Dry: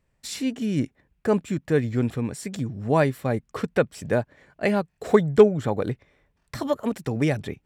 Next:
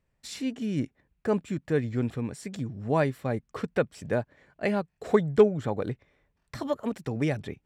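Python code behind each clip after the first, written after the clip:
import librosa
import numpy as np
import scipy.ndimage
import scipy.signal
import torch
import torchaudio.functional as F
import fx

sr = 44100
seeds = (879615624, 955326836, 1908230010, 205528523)

y = fx.high_shelf(x, sr, hz=10000.0, db=-8.5)
y = y * 10.0 ** (-4.5 / 20.0)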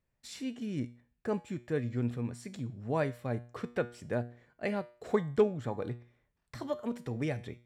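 y = fx.comb_fb(x, sr, f0_hz=120.0, decay_s=0.43, harmonics='all', damping=0.0, mix_pct=60)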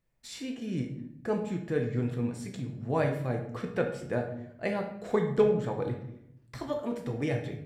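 y = fx.room_shoebox(x, sr, seeds[0], volume_m3=170.0, walls='mixed', distance_m=0.71)
y = y * 10.0 ** (1.5 / 20.0)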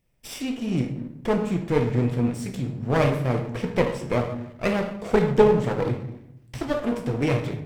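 y = fx.lower_of_two(x, sr, delay_ms=0.36)
y = y * 10.0 ** (8.0 / 20.0)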